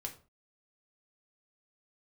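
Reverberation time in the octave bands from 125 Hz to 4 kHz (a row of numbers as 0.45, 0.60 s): 0.40, 0.40, 0.40, 0.40, 0.30, 0.25 s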